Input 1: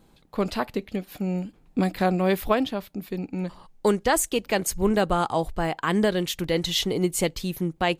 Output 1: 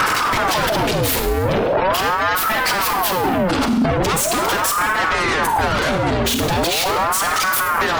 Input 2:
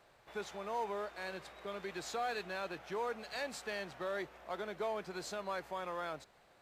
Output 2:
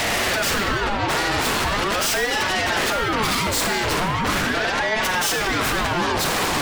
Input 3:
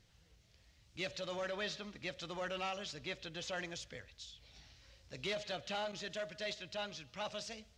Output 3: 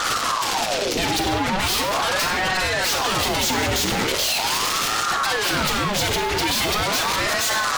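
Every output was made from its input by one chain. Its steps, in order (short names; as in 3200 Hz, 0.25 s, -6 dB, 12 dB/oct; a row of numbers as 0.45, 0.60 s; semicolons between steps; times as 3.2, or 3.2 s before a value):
infinite clipping; notches 50/100/150/200/250 Hz; spectral gate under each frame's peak -25 dB strong; Schroeder reverb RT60 0.81 s, combs from 32 ms, DRR 6 dB; limiter -25 dBFS; ring modulator with a swept carrier 770 Hz, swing 70%, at 0.4 Hz; normalise peaks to -9 dBFS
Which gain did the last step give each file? +16.0, +22.5, +25.5 dB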